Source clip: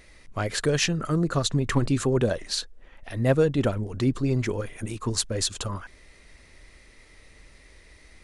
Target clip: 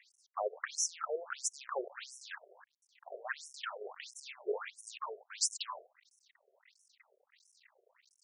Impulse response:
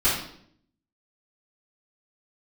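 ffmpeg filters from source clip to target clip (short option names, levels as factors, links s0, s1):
-af "acrusher=bits=7:dc=4:mix=0:aa=0.000001,afftfilt=real='re*between(b*sr/1024,500*pow(7800/500,0.5+0.5*sin(2*PI*1.5*pts/sr))/1.41,500*pow(7800/500,0.5+0.5*sin(2*PI*1.5*pts/sr))*1.41)':imag='im*between(b*sr/1024,500*pow(7800/500,0.5+0.5*sin(2*PI*1.5*pts/sr))/1.41,500*pow(7800/500,0.5+0.5*sin(2*PI*1.5*pts/sr))*1.41)':win_size=1024:overlap=0.75,volume=0.75"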